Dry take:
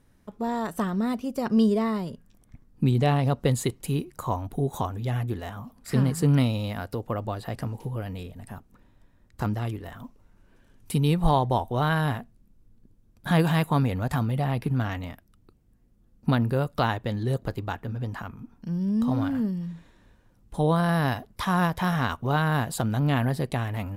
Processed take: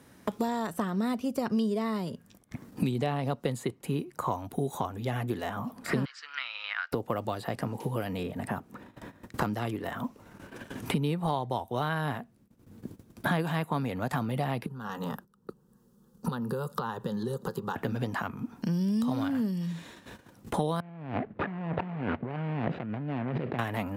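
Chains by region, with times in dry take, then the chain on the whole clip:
6.05–6.92 s: Chebyshev band-pass 1.4–5.6 kHz, order 3 + distance through air 64 m
14.66–17.76 s: compression 10:1, threshold -33 dBFS + static phaser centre 440 Hz, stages 8
20.80–23.59 s: median filter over 41 samples + low-pass 2.5 kHz 24 dB/octave + compressor with a negative ratio -37 dBFS
whole clip: gate -55 dBFS, range -17 dB; Bessel high-pass 180 Hz, order 2; three bands compressed up and down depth 100%; trim -2 dB

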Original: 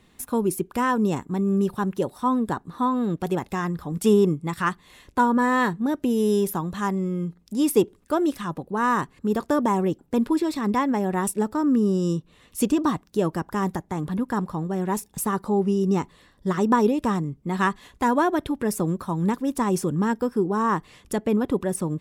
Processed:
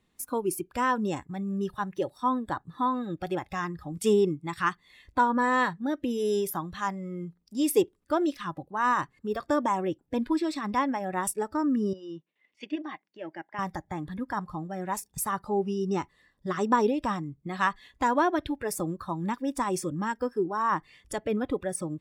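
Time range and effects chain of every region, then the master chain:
11.93–13.59 s: level held to a coarse grid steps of 9 dB + cabinet simulation 340–4600 Hz, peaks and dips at 480 Hz -4 dB, 1.2 kHz -8 dB, 2.1 kHz +7 dB, 4 kHz -7 dB + gate with hold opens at -55 dBFS, closes at -63 dBFS
whole clip: spectral noise reduction 12 dB; dynamic bell 160 Hz, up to -7 dB, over -36 dBFS, Q 1; trim -2 dB

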